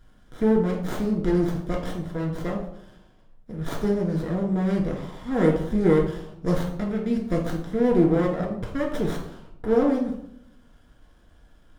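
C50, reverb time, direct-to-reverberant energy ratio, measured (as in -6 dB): 6.0 dB, 0.75 s, -1.0 dB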